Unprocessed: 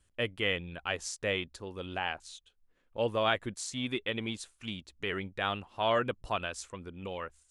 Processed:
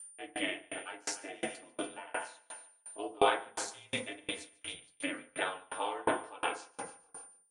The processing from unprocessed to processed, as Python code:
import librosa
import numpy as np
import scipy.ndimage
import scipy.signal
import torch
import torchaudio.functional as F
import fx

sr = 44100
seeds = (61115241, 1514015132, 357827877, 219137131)

p1 = fx.tape_stop_end(x, sr, length_s=1.06)
p2 = scipy.signal.sosfilt(scipy.signal.butter(4, 390.0, 'highpass', fs=sr, output='sos'), p1)
p3 = p2 * np.sin(2.0 * np.pi * 140.0 * np.arange(len(p2)) / sr)
p4 = p3 + 10.0 ** (-48.0 / 20.0) * np.sin(2.0 * np.pi * 9200.0 * np.arange(len(p3)) / sr)
p5 = p4 + fx.echo_feedback(p4, sr, ms=146, feedback_pct=55, wet_db=-12.0, dry=0)
p6 = fx.rev_fdn(p5, sr, rt60_s=0.65, lf_ratio=0.85, hf_ratio=0.3, size_ms=20.0, drr_db=-3.0)
p7 = fx.tremolo_decay(p6, sr, direction='decaying', hz=2.8, depth_db=30)
y = F.gain(torch.from_numpy(p7), 4.5).numpy()